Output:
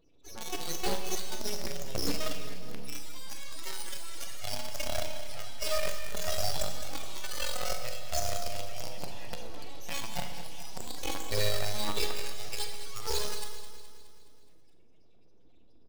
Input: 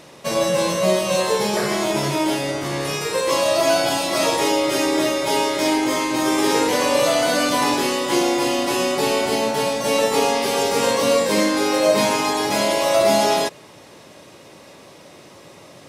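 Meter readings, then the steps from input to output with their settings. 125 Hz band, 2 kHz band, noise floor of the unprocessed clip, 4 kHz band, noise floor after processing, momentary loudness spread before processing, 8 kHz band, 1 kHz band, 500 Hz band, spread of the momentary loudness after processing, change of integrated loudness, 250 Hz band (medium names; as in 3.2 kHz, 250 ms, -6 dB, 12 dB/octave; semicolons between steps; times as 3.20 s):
-10.0 dB, -17.5 dB, -45 dBFS, -13.5 dB, -52 dBFS, 4 LU, -13.0 dB, -20.5 dB, -21.0 dB, 11 LU, -17.0 dB, -23.5 dB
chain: amplifier tone stack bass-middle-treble 6-0-2; loudest bins only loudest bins 8; in parallel at -5 dB: companded quantiser 2-bit; on the sum: full-wave rectifier; on a send: feedback delay 210 ms, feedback 56%, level -13 dB; on the sum: Schroeder reverb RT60 0.99 s, combs from 30 ms, DRR 6.5 dB; trim +4.5 dB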